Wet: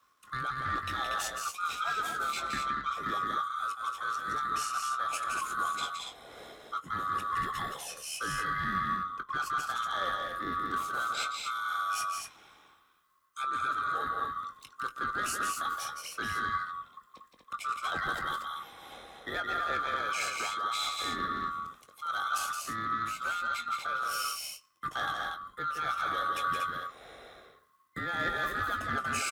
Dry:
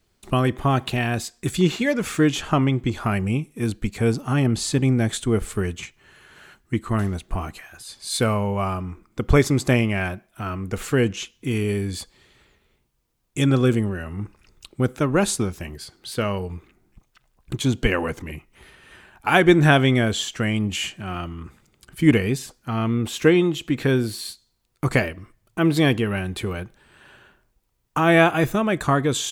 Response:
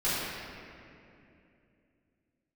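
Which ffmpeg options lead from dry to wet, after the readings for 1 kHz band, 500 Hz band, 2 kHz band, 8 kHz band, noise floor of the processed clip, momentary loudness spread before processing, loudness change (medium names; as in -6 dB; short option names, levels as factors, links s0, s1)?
-1.5 dB, -21.5 dB, -7.0 dB, -7.5 dB, -65 dBFS, 17 LU, -11.0 dB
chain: -filter_complex "[0:a]afftfilt=real='real(if(lt(b,960),b+48*(1-2*mod(floor(b/48),2)),b),0)':imag='imag(if(lt(b,960),b+48*(1-2*mod(floor(b/48),2)),b),0)':win_size=2048:overlap=0.75,equalizer=f=6400:w=1:g=-2.5,areverse,acompressor=threshold=0.0355:ratio=10,areverse,tremolo=f=76:d=0.333,afreqshift=18,asoftclip=type=tanh:threshold=0.0531,asplit=2[s0][s1];[s1]adelay=21,volume=0.299[s2];[s0][s2]amix=inputs=2:normalize=0,asplit=2[s3][s4];[s4]aecho=0:1:169.1|236.2:0.562|0.562[s5];[s3][s5]amix=inputs=2:normalize=0"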